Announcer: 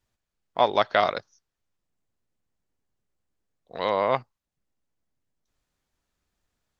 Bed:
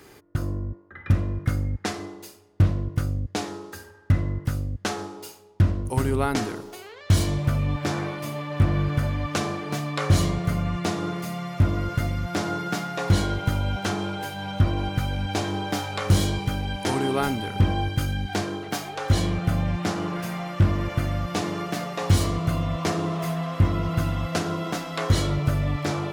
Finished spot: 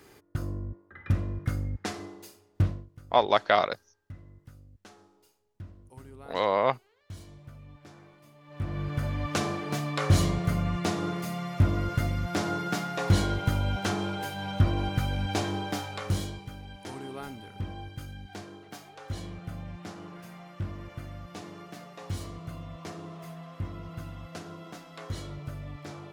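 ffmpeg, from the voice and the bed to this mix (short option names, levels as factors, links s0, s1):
-filter_complex "[0:a]adelay=2550,volume=0.891[s0];[1:a]volume=6.68,afade=t=out:st=2.61:d=0.26:silence=0.112202,afade=t=in:st=8.41:d=0.96:silence=0.0794328,afade=t=out:st=15.38:d=1.05:silence=0.223872[s1];[s0][s1]amix=inputs=2:normalize=0"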